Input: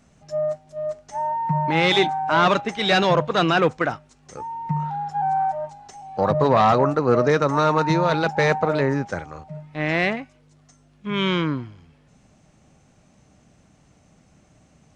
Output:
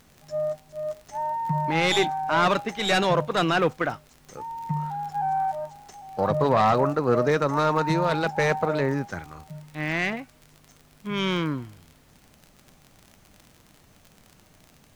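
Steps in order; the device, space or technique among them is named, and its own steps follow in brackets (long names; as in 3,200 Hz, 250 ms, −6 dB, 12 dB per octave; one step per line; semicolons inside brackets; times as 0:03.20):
0:09.11–0:10.13: parametric band 530 Hz −10 dB 0.51 octaves
record under a worn stylus (stylus tracing distortion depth 0.032 ms; surface crackle 45 per second −32 dBFS; pink noise bed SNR 33 dB)
level −3.5 dB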